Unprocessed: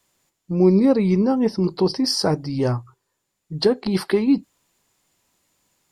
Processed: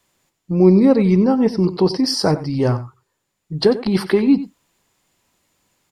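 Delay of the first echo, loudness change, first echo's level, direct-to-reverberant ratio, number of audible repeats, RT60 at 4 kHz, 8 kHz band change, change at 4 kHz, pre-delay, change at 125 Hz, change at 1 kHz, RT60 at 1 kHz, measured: 93 ms, +3.5 dB, -14.5 dB, none, 1, none, +0.5 dB, +1.0 dB, none, +4.0 dB, +3.5 dB, none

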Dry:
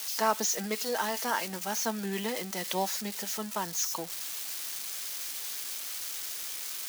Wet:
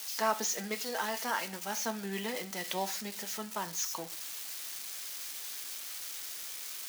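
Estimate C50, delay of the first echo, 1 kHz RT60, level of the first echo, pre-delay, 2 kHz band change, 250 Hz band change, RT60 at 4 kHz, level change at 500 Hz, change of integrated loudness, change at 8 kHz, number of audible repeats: 17.5 dB, none, 0.45 s, none, 5 ms, -1.5 dB, -4.5 dB, 0.40 s, -3.5 dB, -3.5 dB, -4.0 dB, none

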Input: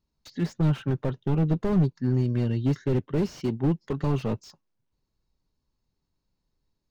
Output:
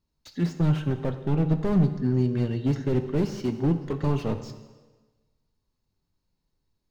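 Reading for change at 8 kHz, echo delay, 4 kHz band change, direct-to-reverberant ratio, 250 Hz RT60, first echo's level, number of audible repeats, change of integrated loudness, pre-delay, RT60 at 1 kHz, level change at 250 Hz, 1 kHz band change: n/a, none, +0.5 dB, 8.0 dB, 1.3 s, none, none, +0.5 dB, 5 ms, 1.3 s, +1.0 dB, +1.0 dB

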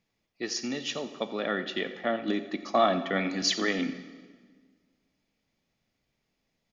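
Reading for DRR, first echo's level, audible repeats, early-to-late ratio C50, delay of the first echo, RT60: 10.0 dB, -15.5 dB, 1, 11.0 dB, 87 ms, 1.6 s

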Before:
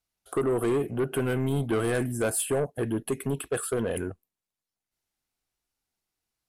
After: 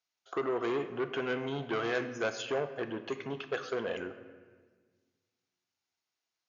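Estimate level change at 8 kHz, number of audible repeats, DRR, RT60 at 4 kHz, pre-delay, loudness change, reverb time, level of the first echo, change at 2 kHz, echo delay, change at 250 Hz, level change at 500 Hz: -18.5 dB, none, 9.5 dB, 1.0 s, 3 ms, -6.5 dB, 1.5 s, none, -0.5 dB, none, -8.5 dB, -5.5 dB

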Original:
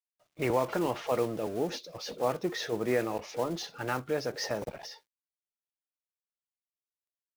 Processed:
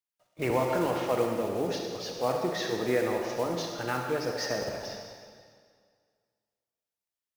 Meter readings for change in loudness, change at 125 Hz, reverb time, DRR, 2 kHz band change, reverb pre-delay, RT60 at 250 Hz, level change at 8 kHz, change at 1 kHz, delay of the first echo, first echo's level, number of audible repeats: +2.0 dB, +2.0 dB, 2.0 s, 1.5 dB, +2.5 dB, 39 ms, 2.0 s, +2.5 dB, +2.5 dB, none, none, none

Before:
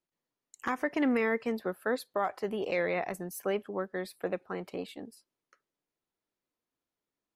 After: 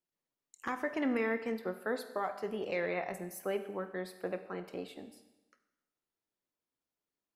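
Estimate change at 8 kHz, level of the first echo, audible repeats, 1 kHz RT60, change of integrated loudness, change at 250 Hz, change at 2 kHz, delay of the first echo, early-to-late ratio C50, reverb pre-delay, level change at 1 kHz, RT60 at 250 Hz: -4.0 dB, none, none, 1.0 s, -4.0 dB, -4.5 dB, -4.0 dB, none, 11.0 dB, 21 ms, -4.0 dB, 1.0 s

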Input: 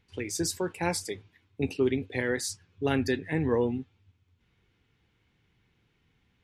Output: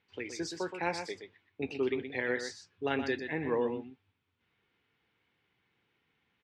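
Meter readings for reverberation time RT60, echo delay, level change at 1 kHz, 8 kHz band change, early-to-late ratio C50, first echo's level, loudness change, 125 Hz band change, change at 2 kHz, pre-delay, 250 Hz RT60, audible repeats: none, 0.122 s, -1.5 dB, -13.0 dB, none, -8.0 dB, -5.0 dB, -12.0 dB, -1.5 dB, none, none, 1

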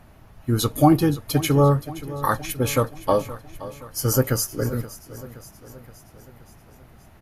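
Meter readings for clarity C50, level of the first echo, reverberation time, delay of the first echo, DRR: none, -16.0 dB, none, 0.523 s, none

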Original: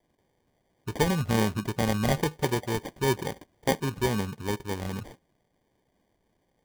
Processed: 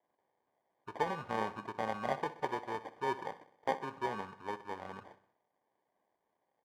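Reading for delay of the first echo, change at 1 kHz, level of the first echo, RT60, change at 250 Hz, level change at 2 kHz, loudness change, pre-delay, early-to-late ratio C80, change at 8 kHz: 63 ms, -3.0 dB, -16.0 dB, none, -16.0 dB, -8.5 dB, -10.0 dB, none, none, -22.5 dB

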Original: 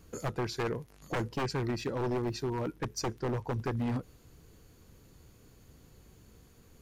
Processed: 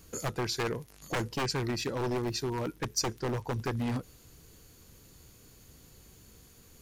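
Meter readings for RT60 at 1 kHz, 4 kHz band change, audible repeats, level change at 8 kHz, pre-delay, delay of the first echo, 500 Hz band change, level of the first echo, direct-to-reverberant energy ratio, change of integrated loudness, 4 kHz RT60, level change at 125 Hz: none, +7.0 dB, none, +8.0 dB, none, none, +0.5 dB, none, none, +1.5 dB, none, 0.0 dB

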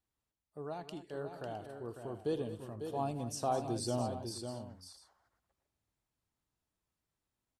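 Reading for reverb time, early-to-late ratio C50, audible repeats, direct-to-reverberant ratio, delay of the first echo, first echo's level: none, none, 4, none, 81 ms, -18.5 dB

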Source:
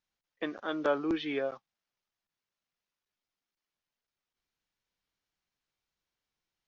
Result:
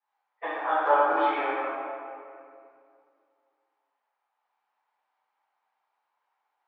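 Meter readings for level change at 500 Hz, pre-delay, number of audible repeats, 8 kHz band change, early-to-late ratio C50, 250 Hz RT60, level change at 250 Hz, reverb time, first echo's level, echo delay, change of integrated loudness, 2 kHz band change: +5.5 dB, 3 ms, none, n/a, -4.0 dB, 2.7 s, -3.5 dB, 2.4 s, none, none, +7.0 dB, +9.0 dB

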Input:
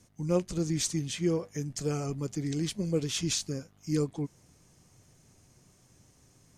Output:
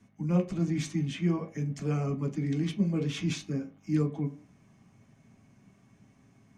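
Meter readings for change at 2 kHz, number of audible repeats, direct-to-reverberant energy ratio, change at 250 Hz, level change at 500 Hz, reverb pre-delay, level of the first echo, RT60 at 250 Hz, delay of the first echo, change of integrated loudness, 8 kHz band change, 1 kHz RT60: +1.0 dB, none, 1.0 dB, +2.5 dB, -3.5 dB, 3 ms, none, 0.40 s, none, +1.0 dB, -12.0 dB, 0.40 s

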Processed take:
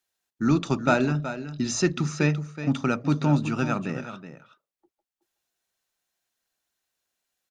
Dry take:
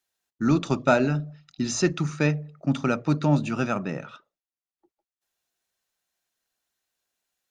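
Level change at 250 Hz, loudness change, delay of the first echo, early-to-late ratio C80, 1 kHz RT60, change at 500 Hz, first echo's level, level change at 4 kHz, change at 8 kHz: 0.0 dB, -0.5 dB, 0.373 s, none, none, -2.0 dB, -11.5 dB, +0.5 dB, +0.5 dB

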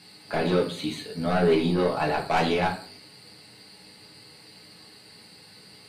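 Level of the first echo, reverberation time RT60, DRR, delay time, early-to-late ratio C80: none, 0.40 s, -3.0 dB, none, 14.0 dB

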